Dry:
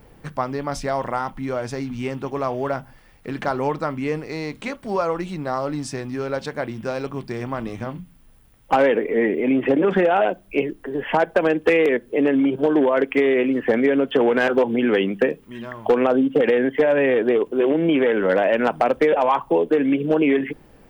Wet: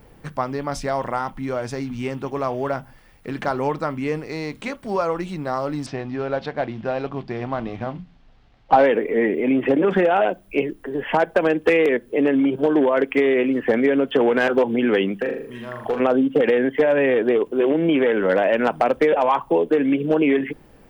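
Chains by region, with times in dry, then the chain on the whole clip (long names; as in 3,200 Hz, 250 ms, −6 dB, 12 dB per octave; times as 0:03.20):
0:05.86–0:08.85: variable-slope delta modulation 64 kbit/s + low-pass filter 4,400 Hz 24 dB per octave + parametric band 720 Hz +7 dB 0.41 octaves
0:15.18–0:16.00: mains-hum notches 50/100/150/200/250/300/350/400/450 Hz + downward compressor 1.5 to 1, threshold −30 dBFS + flutter between parallel walls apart 6.9 metres, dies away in 0.49 s
whole clip: no processing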